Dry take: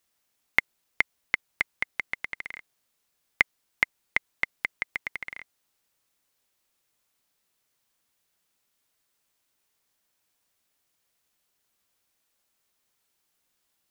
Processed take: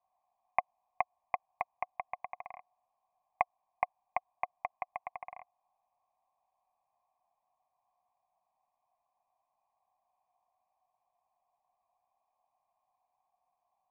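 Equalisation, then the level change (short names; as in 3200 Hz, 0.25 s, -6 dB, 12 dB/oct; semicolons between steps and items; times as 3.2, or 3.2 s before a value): vocal tract filter a; fixed phaser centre 1400 Hz, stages 6; +18.0 dB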